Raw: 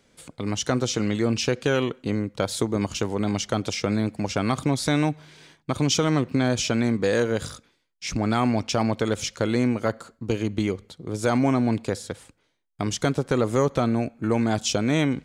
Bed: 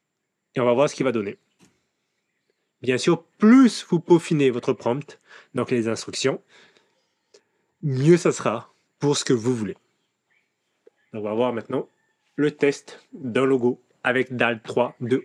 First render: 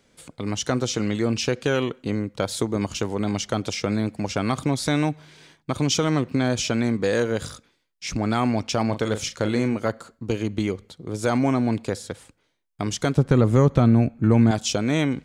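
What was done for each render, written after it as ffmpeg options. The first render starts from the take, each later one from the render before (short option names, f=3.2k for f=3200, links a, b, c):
-filter_complex "[0:a]asettb=1/sr,asplit=3[a][b][c];[a]atrim=end=8.864[d];[b]atrim=start=8.86:end=9.77,asetpts=PTS-STARTPTS,afade=t=in:d=0.004:c=qsin,afade=t=out:st=0.906:d=0.004:c=qsin,asplit=2[e][f];[f]adelay=38,volume=-10dB[g];[e][g]amix=inputs=2:normalize=0,atrim=end_sample=40131[h];[c]atrim=start=9.766[i];[d][h]acrossfade=d=0.004:c1=hsin:c2=qsin[j];[j][i]acrossfade=d=0.004:c1=qsin:c2=hsin,asettb=1/sr,asplit=3[k][l][m];[k]atrim=end=13.174[n];[l]atrim=start=13.17:end=14.51,asetpts=PTS-STARTPTS,afade=t=in:d=0.004:c=qsin,afade=t=out:st=1.336:d=0.004:c=qsin,bass=f=250:g=11,treble=f=4k:g=-5[o];[m]atrim=start=14.506[p];[n][o]acrossfade=d=0.004:c1=hsin:c2=qsin[q];[q][p]acrossfade=d=0.004:c1=qsin:c2=hsin"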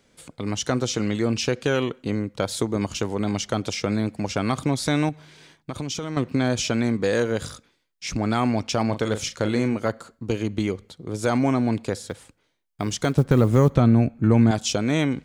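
-filter_complex "[0:a]asettb=1/sr,asplit=3[a][b][c];[a]atrim=end=5.094[d];[b]atrim=start=5.09:end=6.17,asetpts=PTS-STARTPTS,afade=t=in:d=0.004:c=qsin,afade=t=out:st=1.076:d=0.004:c=qsin,acompressor=threshold=-26dB:ratio=6:attack=3.2:release=140:knee=1:detection=peak[e];[c]atrim=start=6.166[f];[d][e]acrossfade=d=0.004:c1=hsin:c2=qsin[g];[g][f]acrossfade=d=0.004:c1=qsin:c2=hsin,asettb=1/sr,asplit=3[h][i][j];[h]atrim=end=12.064[k];[i]atrim=start=12.06:end=13.75,asetpts=PTS-STARTPTS,afade=t=in:d=0.004:c=qsin,afade=t=out:st=1.686:d=0.004:c=qsin,acrusher=bits=9:mode=log:mix=0:aa=0.000001[l];[j]atrim=start=13.746[m];[k][l]acrossfade=d=0.004:c1=hsin:c2=qsin[n];[n][m]acrossfade=d=0.004:c1=qsin:c2=hsin"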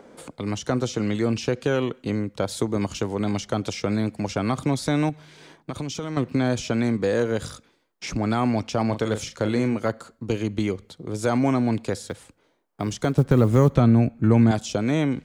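-filter_complex "[0:a]acrossover=split=210|1300[a][b][c];[b]acompressor=mode=upward:threshold=-34dB:ratio=2.5[d];[c]alimiter=limit=-24dB:level=0:latency=1:release=191[e];[a][d][e]amix=inputs=3:normalize=0"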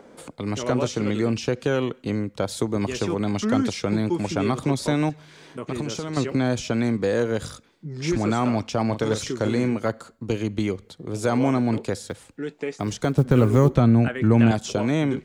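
-filter_complex "[1:a]volume=-10dB[a];[0:a][a]amix=inputs=2:normalize=0"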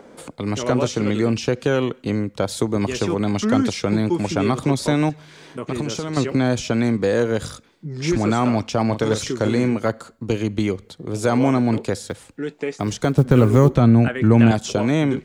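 -af "volume=3.5dB,alimiter=limit=-2dB:level=0:latency=1"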